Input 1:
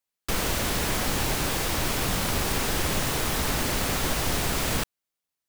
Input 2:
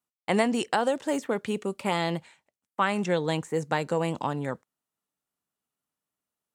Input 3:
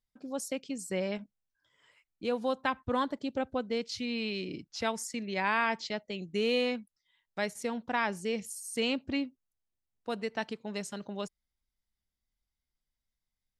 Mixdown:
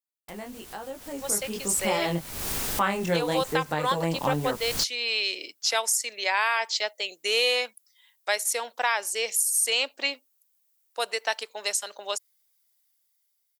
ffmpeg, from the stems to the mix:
-filter_complex "[0:a]highshelf=f=5.6k:g=11,volume=-18dB[a];[1:a]dynaudnorm=f=440:g=7:m=10dB,flanger=delay=18.5:depth=5.5:speed=1.1,volume=-13.5dB,asplit=2[b][c];[2:a]highpass=f=510:w=0.5412,highpass=f=510:w=1.3066,aemphasis=mode=production:type=75fm,adelay=900,volume=-2dB[d];[c]apad=whole_len=242093[e];[a][e]sidechaincompress=threshold=-49dB:ratio=6:attack=6.3:release=257[f];[f][b][d]amix=inputs=3:normalize=0,dynaudnorm=f=230:g=13:m=10.5dB,alimiter=limit=-13dB:level=0:latency=1:release=333"

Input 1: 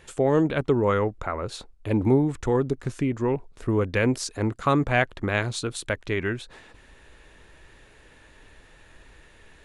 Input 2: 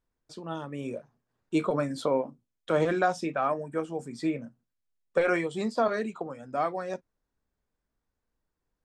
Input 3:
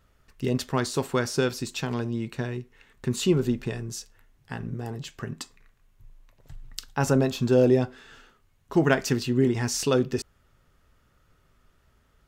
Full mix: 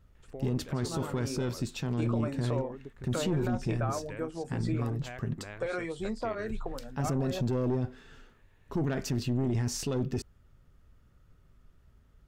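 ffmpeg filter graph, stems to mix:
-filter_complex "[0:a]bass=f=250:g=0,treble=f=4k:g=-9,acompressor=threshold=-24dB:ratio=6,adelay=150,volume=-15.5dB[a];[1:a]acompressor=threshold=-30dB:ratio=3,adynamicequalizer=threshold=0.00316:dfrequency=1800:dqfactor=0.7:tfrequency=1800:tqfactor=0.7:attack=5:release=100:ratio=0.375:range=2:mode=cutabove:tftype=highshelf,adelay=450,volume=-1.5dB[b];[2:a]lowshelf=f=330:g=12,aeval=exprs='(tanh(3.16*val(0)+0.45)-tanh(0.45))/3.16':c=same,volume=-5.5dB[c];[a][b][c]amix=inputs=3:normalize=0,alimiter=limit=-21.5dB:level=0:latency=1:release=14"

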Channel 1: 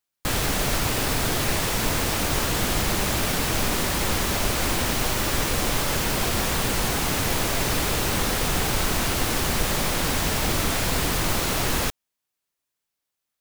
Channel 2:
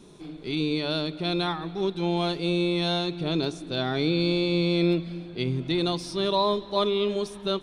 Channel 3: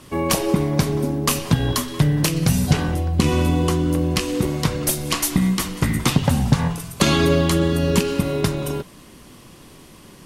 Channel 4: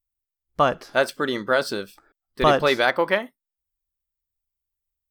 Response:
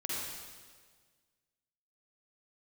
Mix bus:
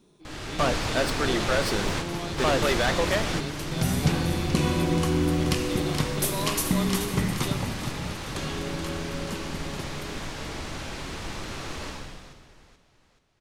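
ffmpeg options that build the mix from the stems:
-filter_complex "[0:a]lowpass=6.2k,volume=-6dB,asplit=3[a][b][c];[b]volume=-9dB[d];[c]volume=-20dB[e];[1:a]volume=-10dB[f];[2:a]adelay=1350,volume=-8.5dB,afade=t=in:st=3.65:d=0.25:silence=0.223872,afade=t=out:st=7.09:d=0.66:silence=0.266073,asplit=3[g][h][i];[h]volume=-8.5dB[j];[i]volume=-8dB[k];[3:a]asoftclip=type=tanh:threshold=-19.5dB,volume=-0.5dB,asplit=2[l][m];[m]apad=whole_len=591323[n];[a][n]sidechaingate=range=-20dB:threshold=-50dB:ratio=16:detection=peak[o];[4:a]atrim=start_sample=2205[p];[d][j]amix=inputs=2:normalize=0[q];[q][p]afir=irnorm=-1:irlink=0[r];[e][k]amix=inputs=2:normalize=0,aecho=0:1:429|858|1287|1716|2145|2574:1|0.45|0.202|0.0911|0.041|0.0185[s];[o][f][g][l][r][s]amix=inputs=6:normalize=0"

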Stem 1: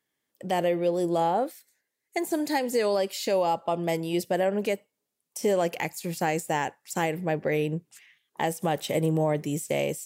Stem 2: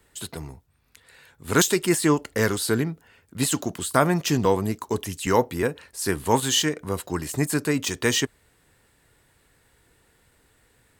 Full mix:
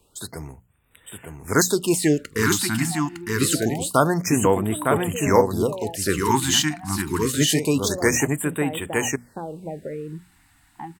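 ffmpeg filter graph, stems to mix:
-filter_complex "[0:a]lowpass=1.1k,acompressor=threshold=-26dB:ratio=6,adelay=2400,volume=-4.5dB[a];[1:a]bandreject=f=3.3k:w=23,volume=1dB,asplit=2[b][c];[c]volume=-4dB,aecho=0:1:908:1[d];[a][b][d]amix=inputs=3:normalize=0,dynaudnorm=f=300:g=17:m=11.5dB,bandreject=f=60:t=h:w=6,bandreject=f=120:t=h:w=6,bandreject=f=180:t=h:w=6,bandreject=f=240:t=h:w=6,afftfilt=real='re*(1-between(b*sr/1024,460*pow(5500/460,0.5+0.5*sin(2*PI*0.26*pts/sr))/1.41,460*pow(5500/460,0.5+0.5*sin(2*PI*0.26*pts/sr))*1.41))':imag='im*(1-between(b*sr/1024,460*pow(5500/460,0.5+0.5*sin(2*PI*0.26*pts/sr))/1.41,460*pow(5500/460,0.5+0.5*sin(2*PI*0.26*pts/sr))*1.41))':win_size=1024:overlap=0.75"

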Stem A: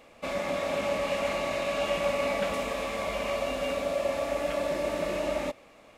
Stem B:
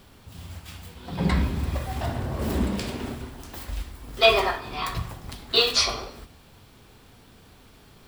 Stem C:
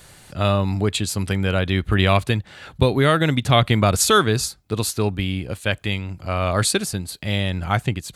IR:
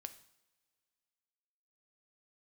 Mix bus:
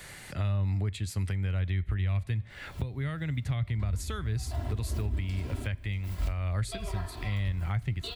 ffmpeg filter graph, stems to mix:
-filter_complex "[0:a]acompressor=threshold=-35dB:ratio=6,adelay=1950,volume=-20dB[a];[1:a]aecho=1:1:3:0.77,adelay=2500,volume=1dB[b];[2:a]equalizer=f=2k:t=o:w=0.5:g=10,volume=-3.5dB,asplit=3[c][d][e];[d]volume=-5.5dB[f];[e]apad=whole_len=466272[g];[b][g]sidechaincompress=threshold=-22dB:ratio=8:attack=6.6:release=629[h];[3:a]atrim=start_sample=2205[i];[f][i]afir=irnorm=-1:irlink=0[j];[a][h][c][j]amix=inputs=4:normalize=0,acrossover=split=120[k][l];[l]acompressor=threshold=-39dB:ratio=6[m];[k][m]amix=inputs=2:normalize=0,alimiter=limit=-21.5dB:level=0:latency=1:release=291"

